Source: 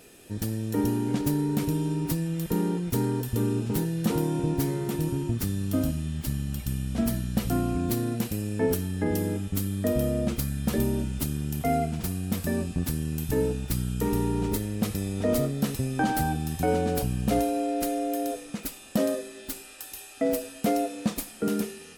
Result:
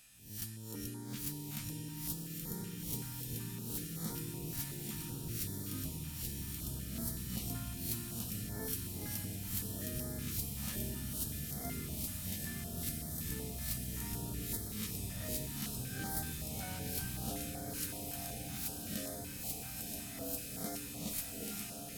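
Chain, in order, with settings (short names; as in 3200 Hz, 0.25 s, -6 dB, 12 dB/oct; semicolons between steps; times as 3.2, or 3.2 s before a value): spectral swells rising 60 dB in 0.54 s; passive tone stack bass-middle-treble 5-5-5; diffused feedback echo 1.028 s, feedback 78%, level -6 dB; stepped notch 5.3 Hz 400–2700 Hz; gain -1.5 dB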